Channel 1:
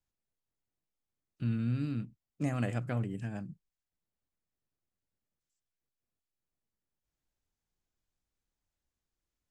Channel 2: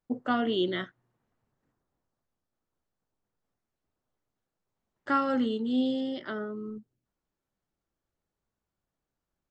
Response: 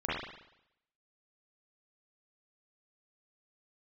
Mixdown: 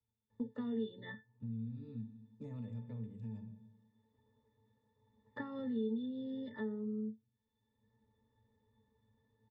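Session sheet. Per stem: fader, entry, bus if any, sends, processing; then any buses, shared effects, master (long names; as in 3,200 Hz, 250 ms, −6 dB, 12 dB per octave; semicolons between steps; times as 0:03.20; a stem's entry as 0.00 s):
−8.5 dB, 0.00 s, send −15.5 dB, parametric band 1,800 Hz −13 dB 0.3 octaves; brickwall limiter −25.5 dBFS, peak gain reduction 5 dB
+2.5 dB, 0.30 s, no send, downward compressor, threshold −27 dBFS, peak gain reduction 7 dB; high-shelf EQ 4,600 Hz +6 dB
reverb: on, RT60 0.80 s, pre-delay 36 ms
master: resonances in every octave A, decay 0.15 s; multiband upward and downward compressor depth 70%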